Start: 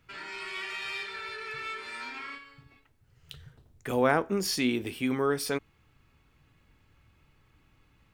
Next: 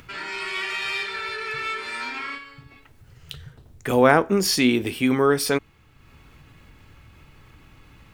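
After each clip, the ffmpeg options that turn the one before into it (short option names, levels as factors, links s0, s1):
-af "acompressor=mode=upward:threshold=0.00316:ratio=2.5,volume=2.66"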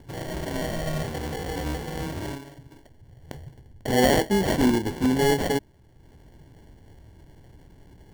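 -filter_complex "[0:a]acrossover=split=310[s0][s1];[s1]acrusher=samples=35:mix=1:aa=0.000001[s2];[s0][s2]amix=inputs=2:normalize=0,asoftclip=type=tanh:threshold=0.299"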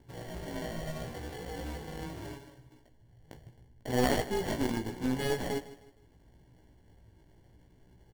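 -af "flanger=delay=16:depth=2.3:speed=0.76,aeval=exprs='0.299*(cos(1*acos(clip(val(0)/0.299,-1,1)))-cos(1*PI/2))+0.119*(cos(2*acos(clip(val(0)/0.299,-1,1)))-cos(2*PI/2))':c=same,aecho=1:1:156|312|468:0.158|0.0571|0.0205,volume=0.447"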